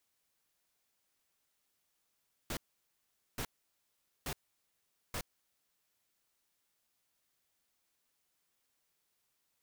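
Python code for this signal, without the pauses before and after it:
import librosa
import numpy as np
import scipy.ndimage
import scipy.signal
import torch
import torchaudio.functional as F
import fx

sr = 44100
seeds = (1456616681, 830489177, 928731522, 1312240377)

y = fx.noise_burst(sr, seeds[0], colour='pink', on_s=0.07, off_s=0.81, bursts=4, level_db=-38.5)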